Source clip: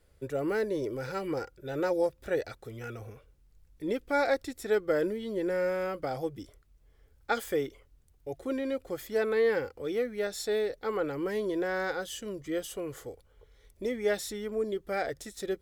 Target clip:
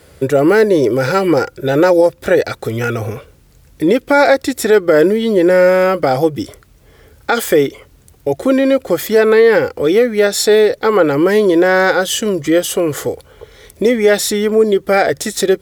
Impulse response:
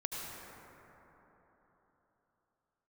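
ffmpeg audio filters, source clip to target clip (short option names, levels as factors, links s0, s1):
-filter_complex "[0:a]highpass=96,asplit=2[s0][s1];[s1]acompressor=threshold=0.00891:ratio=6,volume=1.33[s2];[s0][s2]amix=inputs=2:normalize=0,alimiter=level_in=8.41:limit=0.891:release=50:level=0:latency=1,volume=0.891"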